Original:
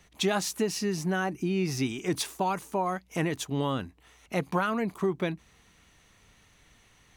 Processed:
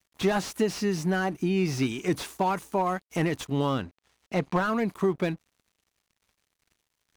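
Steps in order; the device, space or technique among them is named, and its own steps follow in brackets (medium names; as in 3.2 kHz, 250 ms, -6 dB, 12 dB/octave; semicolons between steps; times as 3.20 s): 3.69–4.66 s: low-pass 5.9 kHz 12 dB/octave; early transistor amplifier (crossover distortion -54.5 dBFS; slew-rate limiter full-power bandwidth 62 Hz); trim +3 dB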